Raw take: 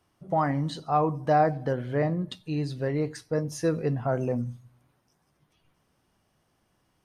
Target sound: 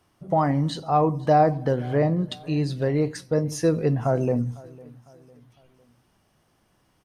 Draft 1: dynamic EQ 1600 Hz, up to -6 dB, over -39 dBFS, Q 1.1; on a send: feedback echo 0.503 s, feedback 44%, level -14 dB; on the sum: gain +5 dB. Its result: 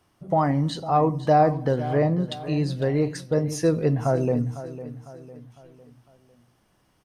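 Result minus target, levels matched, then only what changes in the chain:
echo-to-direct +8.5 dB
change: feedback echo 0.503 s, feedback 44%, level -22.5 dB

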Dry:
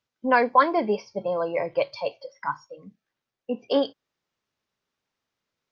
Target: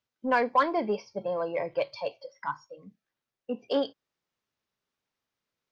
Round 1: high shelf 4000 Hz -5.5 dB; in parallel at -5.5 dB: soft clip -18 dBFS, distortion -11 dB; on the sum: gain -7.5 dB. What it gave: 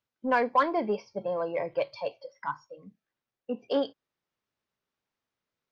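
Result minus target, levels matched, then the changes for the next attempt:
8000 Hz band -3.0 dB
remove: high shelf 4000 Hz -5.5 dB

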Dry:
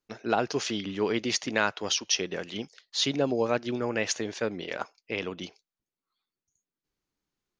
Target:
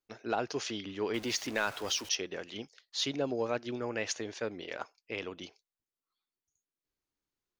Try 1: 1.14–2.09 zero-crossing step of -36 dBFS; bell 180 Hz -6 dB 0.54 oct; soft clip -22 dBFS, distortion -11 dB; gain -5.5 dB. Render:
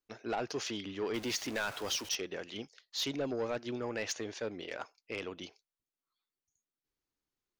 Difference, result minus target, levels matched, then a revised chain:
soft clip: distortion +13 dB
1.14–2.09 zero-crossing step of -36 dBFS; bell 180 Hz -6 dB 0.54 oct; soft clip -10.5 dBFS, distortion -25 dB; gain -5.5 dB

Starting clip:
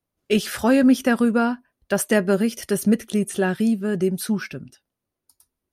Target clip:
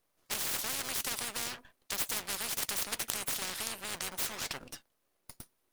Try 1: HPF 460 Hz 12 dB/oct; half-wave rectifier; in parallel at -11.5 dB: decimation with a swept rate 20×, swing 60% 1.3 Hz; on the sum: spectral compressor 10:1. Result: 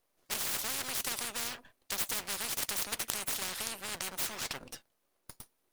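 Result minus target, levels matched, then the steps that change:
decimation with a swept rate: distortion -5 dB
change: decimation with a swept rate 40×, swing 60% 1.3 Hz

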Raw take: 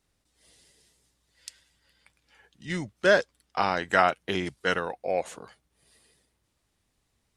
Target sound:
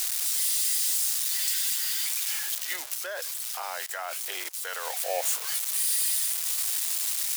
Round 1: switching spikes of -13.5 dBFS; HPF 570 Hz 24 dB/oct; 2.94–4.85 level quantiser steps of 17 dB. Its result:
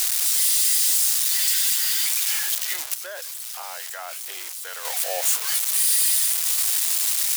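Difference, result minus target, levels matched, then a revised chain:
switching spikes: distortion +6 dB
switching spikes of -20 dBFS; HPF 570 Hz 24 dB/oct; 2.94–4.85 level quantiser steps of 17 dB

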